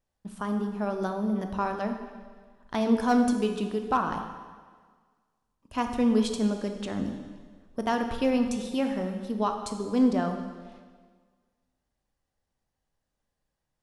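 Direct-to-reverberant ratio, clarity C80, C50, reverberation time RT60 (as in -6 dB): 5.0 dB, 8.0 dB, 6.5 dB, 1.6 s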